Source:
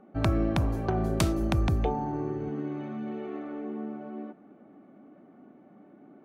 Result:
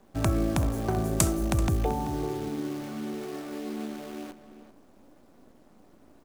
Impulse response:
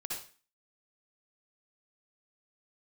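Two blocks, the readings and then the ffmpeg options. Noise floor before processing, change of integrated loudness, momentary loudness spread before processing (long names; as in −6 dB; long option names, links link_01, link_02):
−55 dBFS, +0.5 dB, 11 LU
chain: -filter_complex "[0:a]highshelf=frequency=5500:width_type=q:width=1.5:gain=10,acrusher=bits=8:dc=4:mix=0:aa=0.000001,asplit=2[link_01][link_02];[link_02]adelay=384.8,volume=-12dB,highshelf=frequency=4000:gain=-8.66[link_03];[link_01][link_03]amix=inputs=2:normalize=0"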